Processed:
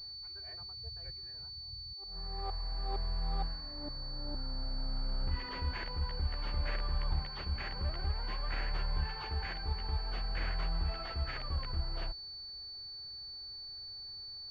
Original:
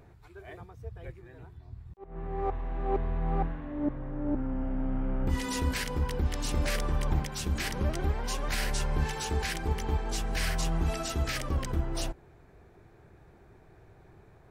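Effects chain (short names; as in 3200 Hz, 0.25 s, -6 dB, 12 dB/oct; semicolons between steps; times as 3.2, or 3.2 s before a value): bell 290 Hz -15 dB 2.3 oct; pulse-width modulation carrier 4500 Hz; gain -2.5 dB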